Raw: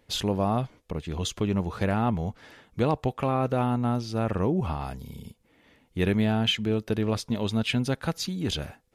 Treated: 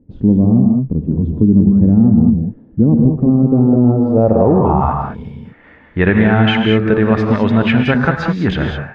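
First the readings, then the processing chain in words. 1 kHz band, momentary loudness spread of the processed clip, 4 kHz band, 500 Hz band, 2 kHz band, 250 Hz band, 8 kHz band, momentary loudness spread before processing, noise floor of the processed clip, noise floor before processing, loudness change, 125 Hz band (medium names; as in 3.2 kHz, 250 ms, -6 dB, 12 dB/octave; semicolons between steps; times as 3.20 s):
+10.5 dB, 8 LU, +4.0 dB, +13.0 dB, +15.5 dB, +17.0 dB, under -10 dB, 10 LU, -44 dBFS, -65 dBFS, +14.5 dB, +14.5 dB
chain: gated-style reverb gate 230 ms rising, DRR 3 dB; low-pass sweep 250 Hz -> 1.7 kHz, 3.45–5.34 s; loudness maximiser +13 dB; trim -1 dB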